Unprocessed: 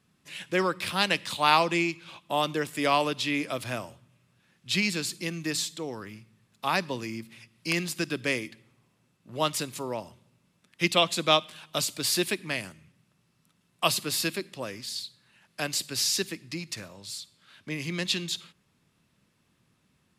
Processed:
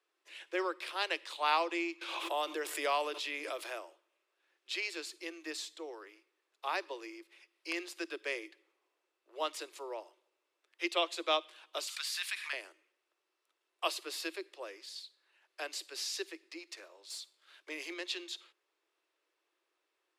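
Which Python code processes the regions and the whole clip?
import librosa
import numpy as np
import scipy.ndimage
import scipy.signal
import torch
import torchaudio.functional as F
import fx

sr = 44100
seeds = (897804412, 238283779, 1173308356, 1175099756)

y = fx.chain(x, sr, fx.high_shelf(hz=11000.0, db=10.5),
    fx.pre_swell(db_per_s=27.0), at=(2.01, 3.8))
y = fx.chain(y, sr, fx.highpass(hz=1200.0, slope=24),
    fx.env_flatten(amount_pct=70), at=(11.87, 12.53))
y = fx.chain(y, sr, fx.high_shelf(hz=5900.0, db=7.5),
    fx.leveller(passes=1), at=(17.1, 17.94))
y = scipy.signal.sosfilt(scipy.signal.butter(16, 320.0, 'highpass', fs=sr, output='sos'), y)
y = fx.high_shelf(y, sr, hz=7300.0, db=-11.5)
y = y * librosa.db_to_amplitude(-8.0)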